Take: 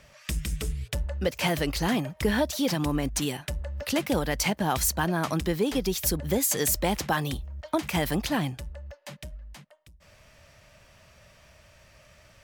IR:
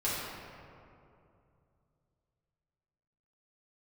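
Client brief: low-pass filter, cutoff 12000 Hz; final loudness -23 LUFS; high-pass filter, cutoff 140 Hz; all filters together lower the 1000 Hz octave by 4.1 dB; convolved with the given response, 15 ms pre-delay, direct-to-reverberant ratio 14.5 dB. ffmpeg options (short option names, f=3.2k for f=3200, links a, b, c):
-filter_complex "[0:a]highpass=140,lowpass=12k,equalizer=f=1k:t=o:g=-5.5,asplit=2[a][b];[1:a]atrim=start_sample=2205,adelay=15[c];[b][c]afir=irnorm=-1:irlink=0,volume=-22.5dB[d];[a][d]amix=inputs=2:normalize=0,volume=6dB"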